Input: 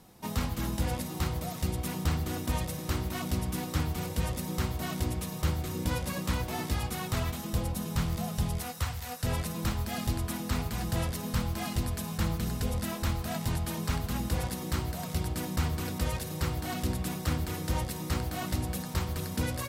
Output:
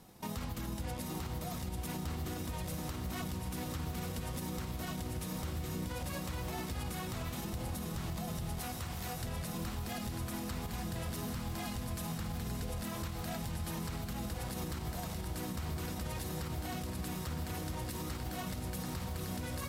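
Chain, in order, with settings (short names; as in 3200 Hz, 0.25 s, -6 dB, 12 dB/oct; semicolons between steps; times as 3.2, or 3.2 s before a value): transient shaper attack +5 dB, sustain +1 dB; compressor, threshold -28 dBFS, peak gain reduction 9.5 dB; diffused feedback echo 0.922 s, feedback 72%, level -9.5 dB; limiter -28 dBFS, peak gain reduction 11 dB; gain -2 dB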